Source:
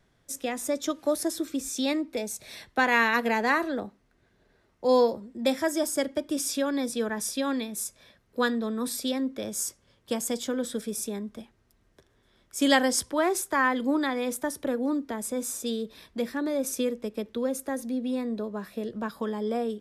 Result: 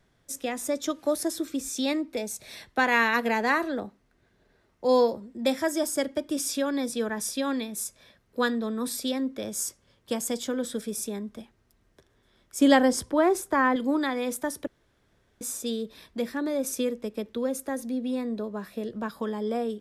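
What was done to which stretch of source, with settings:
12.59–13.76 s: tilt shelf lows +5 dB, about 1.3 kHz
14.67–15.41 s: room tone

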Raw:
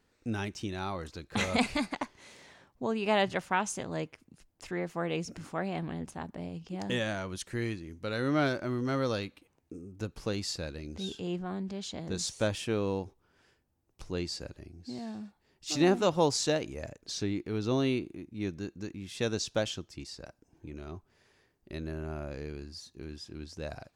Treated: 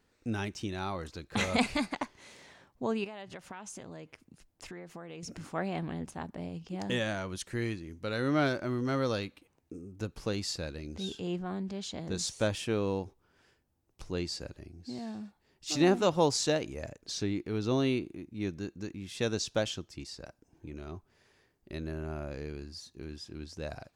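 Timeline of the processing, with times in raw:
3.04–5.23 s: compression 10:1, threshold -40 dBFS

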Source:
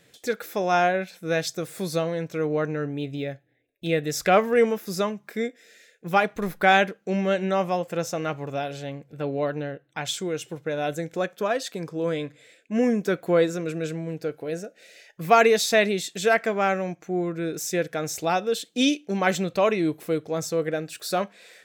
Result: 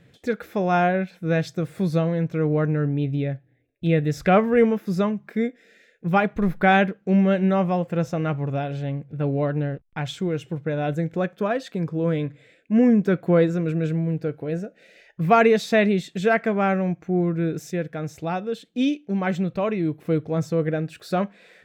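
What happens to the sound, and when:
9.71–10.41 s: hysteresis with a dead band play -49.5 dBFS
17.71–20.05 s: gain -4.5 dB
whole clip: tone controls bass +12 dB, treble -13 dB

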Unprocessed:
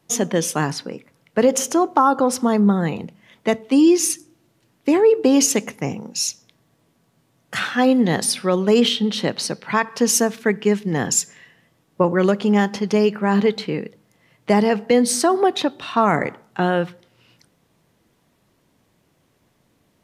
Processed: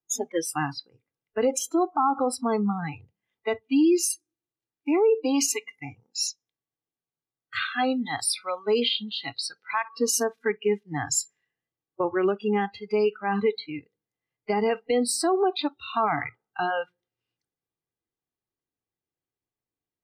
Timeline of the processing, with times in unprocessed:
4.12–9.89 s: bass shelf 480 Hz -4 dB
whole clip: spectral noise reduction 27 dB; comb 2.5 ms, depth 43%; peak limiter -9.5 dBFS; trim -5 dB

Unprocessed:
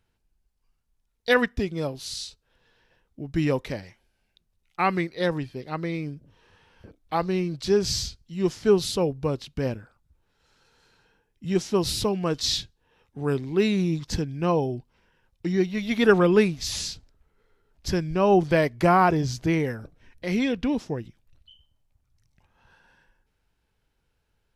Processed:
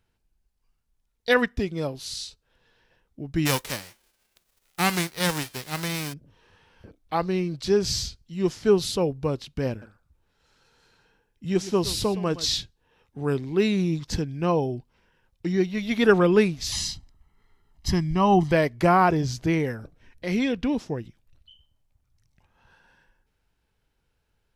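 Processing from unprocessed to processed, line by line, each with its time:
3.45–6.12 s: formants flattened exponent 0.3
9.70–12.52 s: delay 117 ms -15.5 dB
16.72–18.52 s: comb 1 ms, depth 79%

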